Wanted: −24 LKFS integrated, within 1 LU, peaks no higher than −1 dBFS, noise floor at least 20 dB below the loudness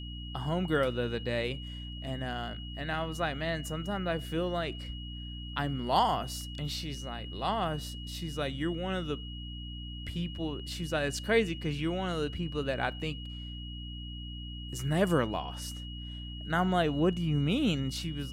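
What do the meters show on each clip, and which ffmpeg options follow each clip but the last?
mains hum 60 Hz; hum harmonics up to 300 Hz; level of the hum −39 dBFS; interfering tone 2,900 Hz; level of the tone −45 dBFS; integrated loudness −33.0 LKFS; sample peak −13.0 dBFS; target loudness −24.0 LKFS
→ -af "bandreject=frequency=60:width_type=h:width=4,bandreject=frequency=120:width_type=h:width=4,bandreject=frequency=180:width_type=h:width=4,bandreject=frequency=240:width_type=h:width=4,bandreject=frequency=300:width_type=h:width=4"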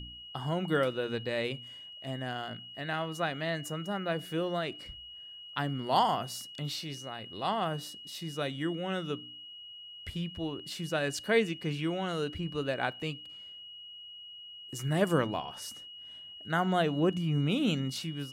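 mains hum none found; interfering tone 2,900 Hz; level of the tone −45 dBFS
→ -af "bandreject=frequency=2900:width=30"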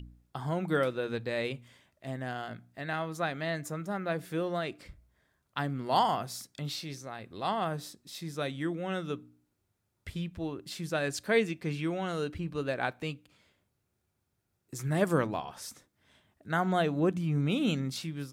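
interfering tone none found; integrated loudness −33.0 LKFS; sample peak −13.5 dBFS; target loudness −24.0 LKFS
→ -af "volume=9dB"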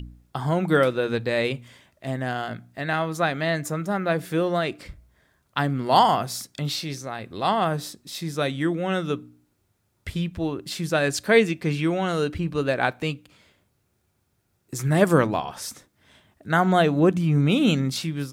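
integrated loudness −24.0 LKFS; sample peak −4.5 dBFS; background noise floor −70 dBFS

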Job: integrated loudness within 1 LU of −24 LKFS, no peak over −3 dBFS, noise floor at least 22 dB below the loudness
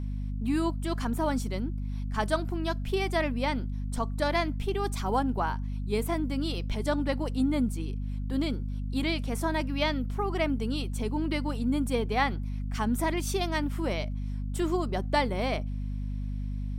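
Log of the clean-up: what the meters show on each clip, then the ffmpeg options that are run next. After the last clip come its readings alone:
mains hum 50 Hz; hum harmonics up to 250 Hz; level of the hum −30 dBFS; integrated loudness −30.5 LKFS; sample peak −13.0 dBFS; target loudness −24.0 LKFS
→ -af "bandreject=frequency=50:width_type=h:width=4,bandreject=frequency=100:width_type=h:width=4,bandreject=frequency=150:width_type=h:width=4,bandreject=frequency=200:width_type=h:width=4,bandreject=frequency=250:width_type=h:width=4"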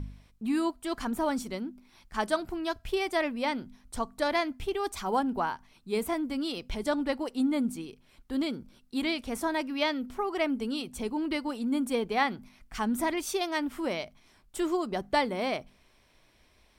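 mains hum none found; integrated loudness −31.0 LKFS; sample peak −14.5 dBFS; target loudness −24.0 LKFS
→ -af "volume=7dB"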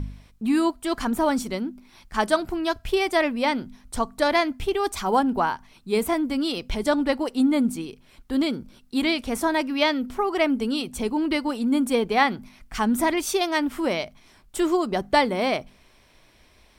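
integrated loudness −24.0 LKFS; sample peak −7.5 dBFS; background noise floor −57 dBFS

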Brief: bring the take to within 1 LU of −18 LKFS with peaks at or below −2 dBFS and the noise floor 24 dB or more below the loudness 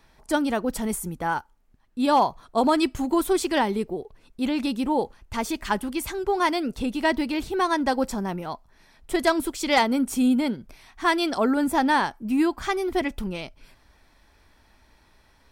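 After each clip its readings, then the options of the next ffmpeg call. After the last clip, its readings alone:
integrated loudness −24.5 LKFS; sample peak −10.5 dBFS; target loudness −18.0 LKFS
→ -af "volume=6.5dB"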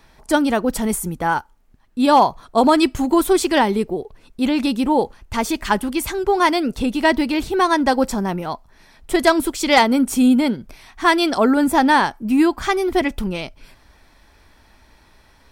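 integrated loudness −18.0 LKFS; sample peak −4.0 dBFS; background noise floor −53 dBFS

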